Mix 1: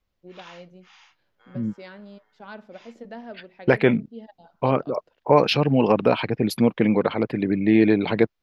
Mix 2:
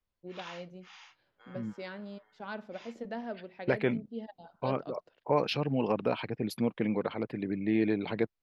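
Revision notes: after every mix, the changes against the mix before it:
second voice −11.0 dB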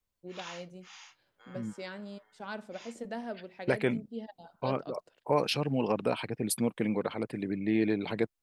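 master: remove moving average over 5 samples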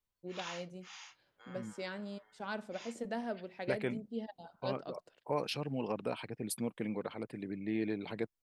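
second voice −7.5 dB

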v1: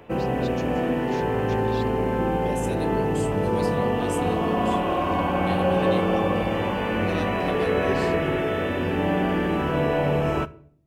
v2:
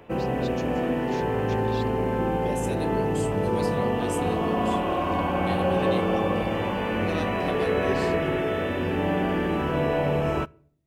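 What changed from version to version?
background: send −9.5 dB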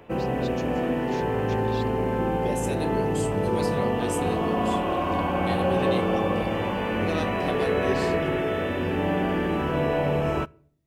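second voice: send +11.5 dB

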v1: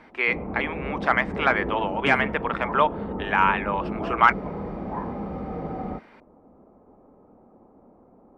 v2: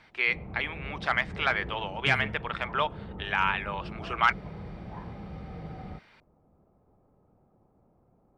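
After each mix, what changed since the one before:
background −4.5 dB
master: add octave-band graphic EQ 125/250/500/1,000/2,000/4,000 Hz +7/−11/−6/−7/−3/+5 dB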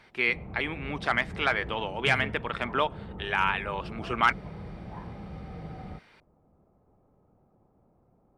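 first voice: remove band-pass filter 560–6,500 Hz

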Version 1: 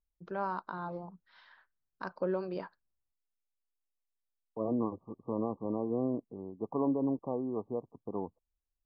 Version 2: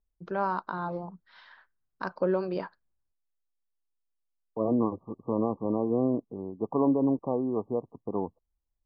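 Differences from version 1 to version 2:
first voice +6.0 dB
second voice +6.0 dB

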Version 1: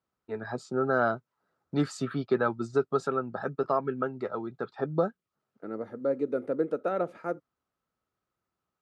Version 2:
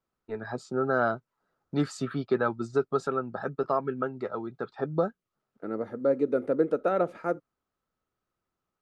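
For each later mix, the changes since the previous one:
second voice +3.5 dB
master: remove high-pass filter 56 Hz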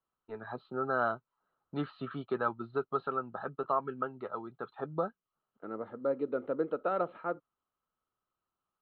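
master: add Chebyshev low-pass with heavy ripple 4,200 Hz, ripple 9 dB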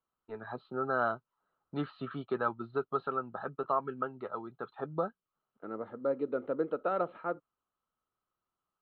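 nothing changed

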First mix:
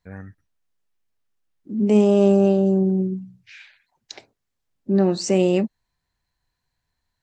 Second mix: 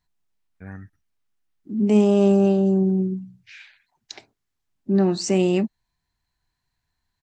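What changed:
first voice: entry +0.55 s
master: add parametric band 520 Hz −9 dB 0.33 octaves

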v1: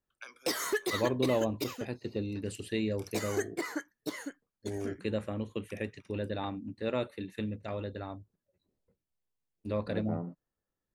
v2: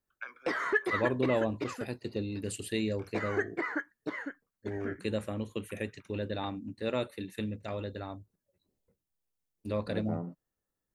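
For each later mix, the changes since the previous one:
background: add low-pass with resonance 1,700 Hz, resonance Q 2.1
master: add high-shelf EQ 6,300 Hz +11 dB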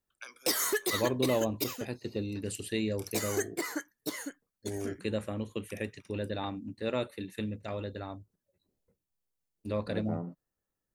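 background: remove low-pass with resonance 1,700 Hz, resonance Q 2.1

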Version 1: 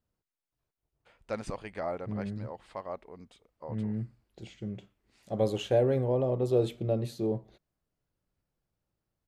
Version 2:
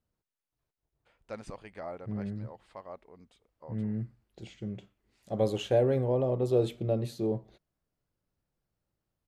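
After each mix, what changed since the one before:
first voice −6.0 dB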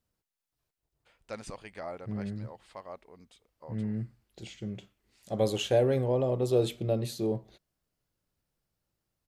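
master: add high-shelf EQ 2,500 Hz +9 dB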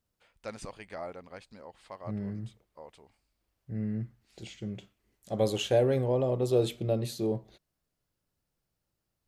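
first voice: entry −0.85 s

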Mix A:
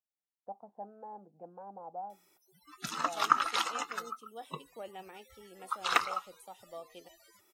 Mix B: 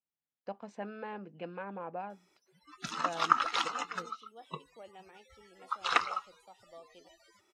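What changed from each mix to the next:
first voice: remove transistor ladder low-pass 860 Hz, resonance 70%
second voice −6.5 dB
master: add low-pass filter 6,100 Hz 12 dB per octave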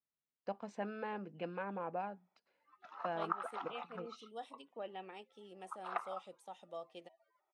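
second voice +6.0 dB
background: add four-pole ladder band-pass 800 Hz, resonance 60%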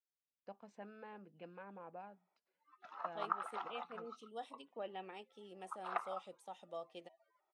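first voice −11.0 dB

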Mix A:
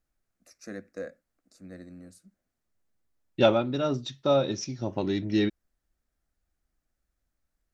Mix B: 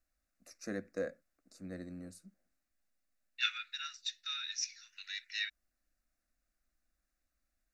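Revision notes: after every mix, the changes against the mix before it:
second voice: add Butterworth high-pass 1,500 Hz 72 dB per octave
master: add Butterworth band-reject 3,200 Hz, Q 6.6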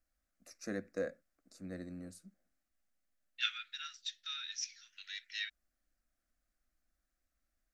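second voice −3.0 dB
master: remove Butterworth band-reject 3,200 Hz, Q 6.6

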